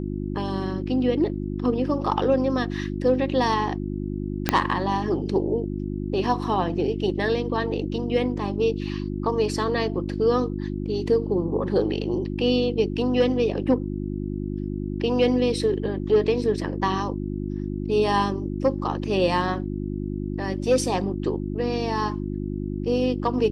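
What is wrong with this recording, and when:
hum 50 Hz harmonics 7 -29 dBFS
4.49 s: pop -3 dBFS

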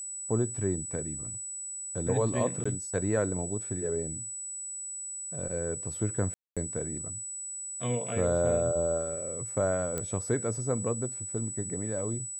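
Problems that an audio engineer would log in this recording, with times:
whine 7.9 kHz -36 dBFS
2.64–2.65 s: dropout 15 ms
6.34–6.57 s: dropout 226 ms
9.98 s: pop -18 dBFS

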